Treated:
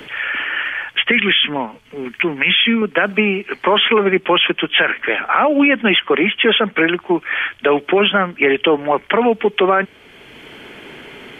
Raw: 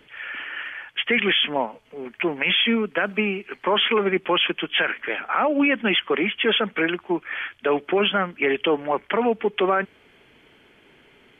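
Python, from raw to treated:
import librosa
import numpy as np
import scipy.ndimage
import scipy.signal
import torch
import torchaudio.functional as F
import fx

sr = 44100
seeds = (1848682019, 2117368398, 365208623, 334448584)

y = fx.peak_eq(x, sr, hz=620.0, db=-11.0, octaves=1.4, at=(1.11, 2.82))
y = fx.band_squash(y, sr, depth_pct=40)
y = y * librosa.db_to_amplitude(7.0)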